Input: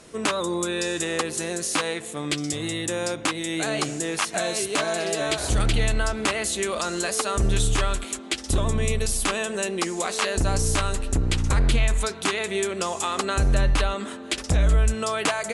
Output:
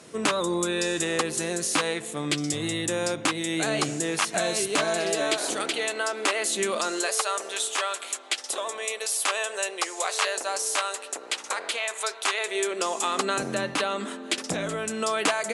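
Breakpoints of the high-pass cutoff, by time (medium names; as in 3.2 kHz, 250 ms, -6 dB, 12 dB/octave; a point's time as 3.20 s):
high-pass 24 dB/octave
4.56 s 100 Hz
5.73 s 330 Hz
6.40 s 330 Hz
6.64 s 150 Hz
7.21 s 510 Hz
12.35 s 510 Hz
13.12 s 190 Hz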